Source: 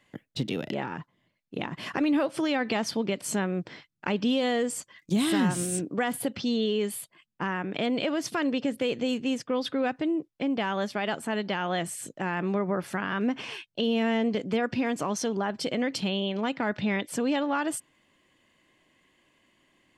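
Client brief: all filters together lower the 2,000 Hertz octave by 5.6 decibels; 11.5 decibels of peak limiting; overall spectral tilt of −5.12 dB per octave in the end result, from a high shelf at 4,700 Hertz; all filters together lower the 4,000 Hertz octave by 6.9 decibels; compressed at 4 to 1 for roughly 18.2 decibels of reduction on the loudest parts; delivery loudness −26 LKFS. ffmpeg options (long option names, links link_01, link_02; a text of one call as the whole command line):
ffmpeg -i in.wav -af "equalizer=frequency=2000:width_type=o:gain=-5,equalizer=frequency=4000:width_type=o:gain=-3.5,highshelf=frequency=4700:gain=-8.5,acompressor=threshold=-45dB:ratio=4,volume=22.5dB,alimiter=limit=-17dB:level=0:latency=1" out.wav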